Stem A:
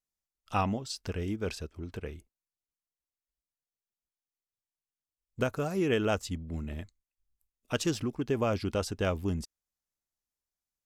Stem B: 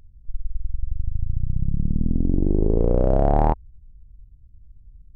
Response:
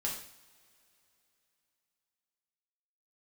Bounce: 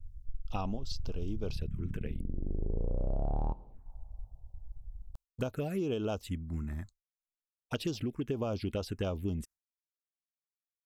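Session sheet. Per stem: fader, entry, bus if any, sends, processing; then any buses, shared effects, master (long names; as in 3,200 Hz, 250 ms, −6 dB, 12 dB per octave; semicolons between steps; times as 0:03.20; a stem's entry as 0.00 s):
+1.5 dB, 0.00 s, no send, no processing
−4.0 dB, 0.00 s, send −18.5 dB, reverb reduction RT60 0.69 s; low-shelf EQ 92 Hz +8.5 dB; automatic ducking −14 dB, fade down 0.30 s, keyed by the first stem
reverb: on, pre-delay 3 ms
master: phaser swept by the level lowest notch 210 Hz, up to 1,900 Hz, full sweep at −24 dBFS; downward expander −46 dBFS; downward compressor 6 to 1, threshold −30 dBFS, peak gain reduction 14.5 dB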